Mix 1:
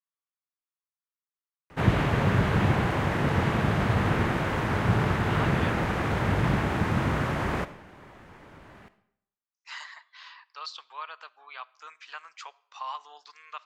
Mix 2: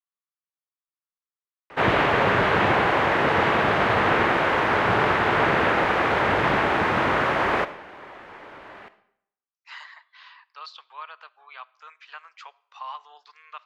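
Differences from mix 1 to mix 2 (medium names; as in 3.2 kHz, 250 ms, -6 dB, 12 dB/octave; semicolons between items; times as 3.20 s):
background +9.5 dB; master: add three-band isolator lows -17 dB, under 340 Hz, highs -14 dB, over 4.5 kHz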